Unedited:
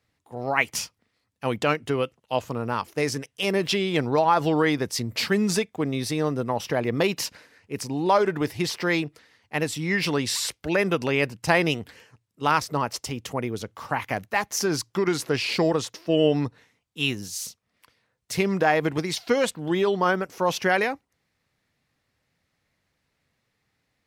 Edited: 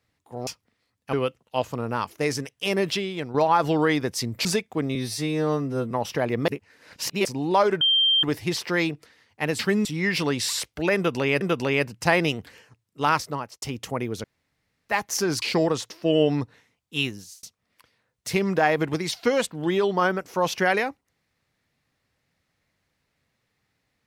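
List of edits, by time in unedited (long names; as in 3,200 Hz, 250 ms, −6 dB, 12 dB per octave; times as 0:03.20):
0:00.47–0:00.81: remove
0:01.47–0:01.90: remove
0:03.63–0:04.11: fade out quadratic, to −8.5 dB
0:05.22–0:05.48: move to 0:09.72
0:05.98–0:06.46: time-stretch 2×
0:07.03–0:07.80: reverse
0:08.36: insert tone 3,160 Hz −16.5 dBFS 0.42 s
0:10.83–0:11.28: repeat, 2 plays
0:12.60–0:13.04: fade out
0:13.66–0:14.31: fill with room tone
0:14.84–0:15.46: remove
0:17.03–0:17.47: fade out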